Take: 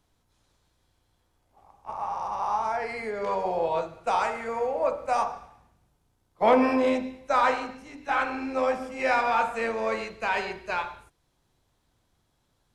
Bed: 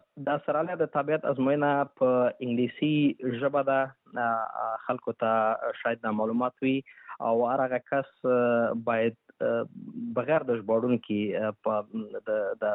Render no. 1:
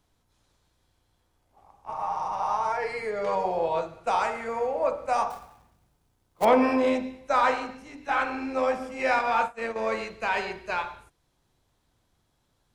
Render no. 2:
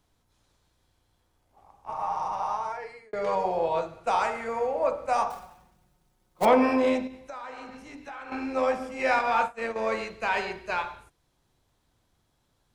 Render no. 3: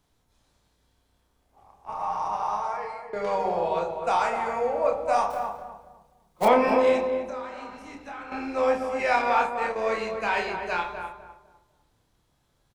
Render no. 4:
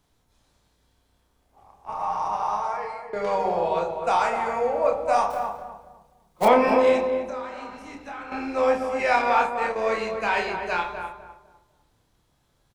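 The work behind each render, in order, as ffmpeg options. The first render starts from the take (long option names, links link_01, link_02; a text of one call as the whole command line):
ffmpeg -i in.wav -filter_complex "[0:a]asettb=1/sr,asplit=3[link_01][link_02][link_03];[link_01]atrim=end=1.904[link_04];[link_02]atrim=start=1.9:end=3.46,asetpts=PTS-STARTPTS,afade=type=in:duration=0.004:curve=qsin,afade=type=out:start_time=1.556:duration=0.004:curve=qsin,aecho=1:1:6.5:0.65,atrim=end_sample=68796[link_05];[link_03]atrim=start=3.456[link_06];[link_04][link_05]acrossfade=duration=0.004:curve1=hsin:curve2=qsin[link_07];[link_07][link_06]acrossfade=duration=0.004:curve1=qsin:curve2=hsin,asettb=1/sr,asplit=3[link_08][link_09][link_10];[link_08]atrim=end=5.304[link_11];[link_09]atrim=start=5.3:end=6.45,asetpts=PTS-STARTPTS,afade=type=in:duration=0.004:curve=qsin,afade=type=out:start_time=1.146:duration=0.004:curve=qsin,acrusher=bits=3:mode=log:mix=0:aa=0.000001[link_12];[link_10]atrim=start=6.446[link_13];[link_11][link_12]acrossfade=duration=0.004:curve1=hsin:curve2=qsin[link_14];[link_14][link_13]acrossfade=duration=0.004:curve1=qsin:curve2=hsin,asettb=1/sr,asplit=3[link_15][link_16][link_17];[link_15]atrim=end=9.194[link_18];[link_16]atrim=start=9.19:end=9.76,asetpts=PTS-STARTPTS,afade=type=in:duration=0.004:curve=qsin,afade=type=out:start_time=0.566:duration=0.004:curve=qsin,agate=range=-33dB:threshold=-25dB:ratio=3:release=100:detection=peak[link_19];[link_17]atrim=start=9.756[link_20];[link_18][link_19]acrossfade=duration=0.004:curve1=hsin:curve2=qsin[link_21];[link_21][link_20]acrossfade=duration=0.004:curve1=qsin:curve2=hsin" out.wav
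ffmpeg -i in.wav -filter_complex "[0:a]asettb=1/sr,asplit=3[link_01][link_02][link_03];[link_01]atrim=end=5.374[link_04];[link_02]atrim=start=5.37:end=6.47,asetpts=PTS-STARTPTS,afade=type=in:duration=0.004:curve=qsin,afade=type=out:start_time=1.096:duration=0.004:curve=qsin,aecho=1:1:5.5:0.65,atrim=end_sample=48510[link_05];[link_03]atrim=start=6.466[link_06];[link_04][link_05]acrossfade=duration=0.004:curve1=hsin:curve2=qsin[link_07];[link_07][link_06]acrossfade=duration=0.004:curve1=qsin:curve2=hsin,asettb=1/sr,asplit=3[link_08][link_09][link_10];[link_08]atrim=end=7.074[link_11];[link_09]atrim=start=7.07:end=8.32,asetpts=PTS-STARTPTS,afade=type=in:duration=0.004:curve=qsin,afade=type=out:start_time=1.246:duration=0.004:curve=qsin,acompressor=threshold=-37dB:ratio=8:attack=3.2:release=140:knee=1:detection=peak[link_12];[link_10]atrim=start=8.316[link_13];[link_11][link_12]acrossfade=duration=0.004:curve1=hsin:curve2=qsin[link_14];[link_14][link_13]acrossfade=duration=0.004:curve1=qsin:curve2=hsin,asplit=2[link_15][link_16];[link_15]atrim=end=3.13,asetpts=PTS-STARTPTS,afade=type=out:start_time=2.28:duration=0.85[link_17];[link_16]atrim=start=3.13,asetpts=PTS-STARTPTS,afade=type=in:duration=0.004:curve=hsin[link_18];[link_17][link_18]concat=n=2:v=0:a=1" out.wav
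ffmpeg -i in.wav -filter_complex "[0:a]asplit=2[link_01][link_02];[link_02]adelay=29,volume=-5dB[link_03];[link_01][link_03]amix=inputs=2:normalize=0,asplit=2[link_04][link_05];[link_05]adelay=252,lowpass=frequency=1200:poles=1,volume=-5dB,asplit=2[link_06][link_07];[link_07]adelay=252,lowpass=frequency=1200:poles=1,volume=0.32,asplit=2[link_08][link_09];[link_09]adelay=252,lowpass=frequency=1200:poles=1,volume=0.32,asplit=2[link_10][link_11];[link_11]adelay=252,lowpass=frequency=1200:poles=1,volume=0.32[link_12];[link_04][link_06][link_08][link_10][link_12]amix=inputs=5:normalize=0" out.wav
ffmpeg -i in.wav -af "volume=2dB" out.wav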